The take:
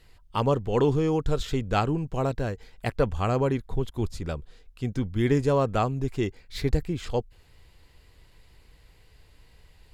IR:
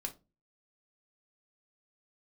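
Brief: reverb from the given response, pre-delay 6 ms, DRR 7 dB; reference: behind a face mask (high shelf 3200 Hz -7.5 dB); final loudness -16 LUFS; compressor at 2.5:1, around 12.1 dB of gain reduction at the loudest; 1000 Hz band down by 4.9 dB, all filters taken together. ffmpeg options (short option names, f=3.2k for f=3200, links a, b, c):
-filter_complex "[0:a]equalizer=f=1k:t=o:g=-6,acompressor=threshold=-36dB:ratio=2.5,asplit=2[a][b];[1:a]atrim=start_sample=2205,adelay=6[c];[b][c]afir=irnorm=-1:irlink=0,volume=-6dB[d];[a][d]amix=inputs=2:normalize=0,highshelf=f=3.2k:g=-7.5,volume=21dB"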